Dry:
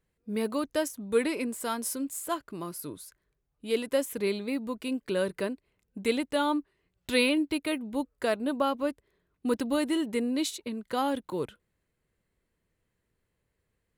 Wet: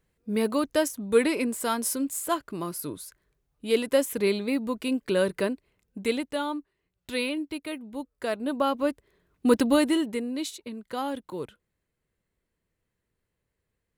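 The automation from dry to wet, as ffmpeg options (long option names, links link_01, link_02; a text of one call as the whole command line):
ffmpeg -i in.wav -af "volume=17dB,afade=type=out:start_time=5.52:duration=1.03:silence=0.354813,afade=type=in:start_time=8.11:duration=1.52:silence=0.237137,afade=type=out:start_time=9.63:duration=0.59:silence=0.298538" out.wav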